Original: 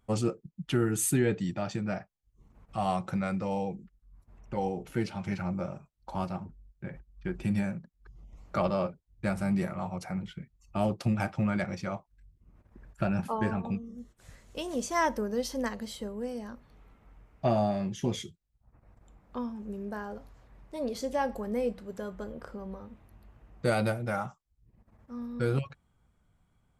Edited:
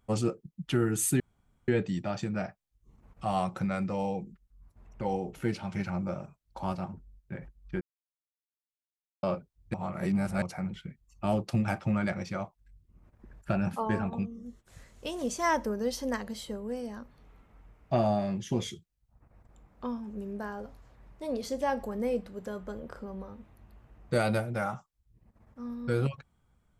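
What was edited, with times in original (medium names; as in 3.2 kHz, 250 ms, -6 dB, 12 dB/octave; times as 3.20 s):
1.20 s: insert room tone 0.48 s
7.33–8.75 s: mute
9.26–9.94 s: reverse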